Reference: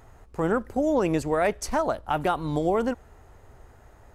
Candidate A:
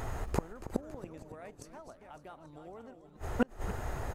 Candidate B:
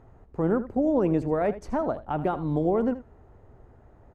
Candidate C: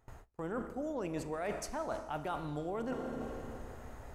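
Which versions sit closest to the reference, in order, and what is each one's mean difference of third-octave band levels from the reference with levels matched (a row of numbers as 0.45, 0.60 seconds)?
B, C, A; 5.5, 9.0, 13.5 decibels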